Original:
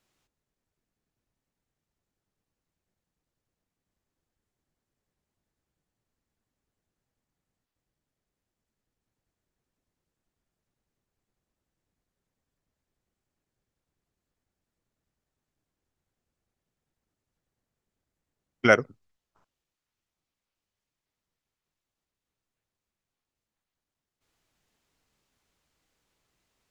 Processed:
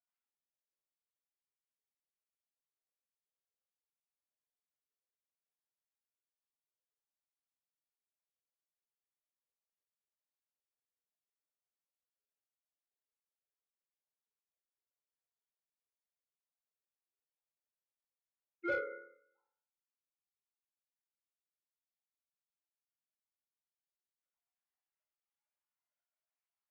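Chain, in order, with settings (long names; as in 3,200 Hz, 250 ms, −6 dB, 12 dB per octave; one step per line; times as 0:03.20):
three sine waves on the formant tracks
resonators tuned to a chord C#2 major, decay 0.68 s
mid-hump overdrive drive 13 dB, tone 1,000 Hz, clips at −24 dBFS
level +1 dB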